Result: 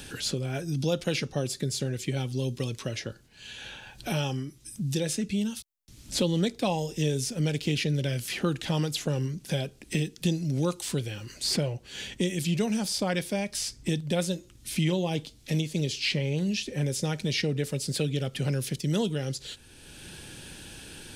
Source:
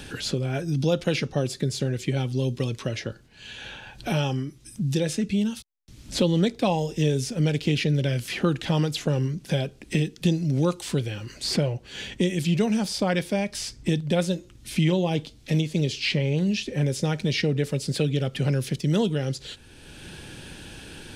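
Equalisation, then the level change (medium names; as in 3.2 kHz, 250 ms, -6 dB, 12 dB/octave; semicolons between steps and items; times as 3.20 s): treble shelf 5.3 kHz +9.5 dB; -4.5 dB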